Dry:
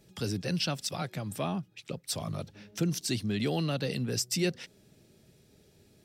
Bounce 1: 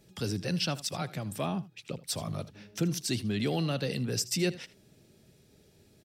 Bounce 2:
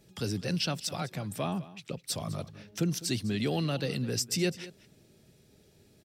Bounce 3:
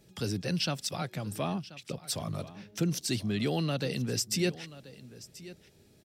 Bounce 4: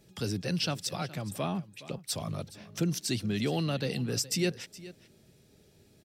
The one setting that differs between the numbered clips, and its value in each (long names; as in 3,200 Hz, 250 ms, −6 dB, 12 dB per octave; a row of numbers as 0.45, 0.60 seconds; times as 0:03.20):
single-tap delay, delay time: 79, 204, 1,033, 418 milliseconds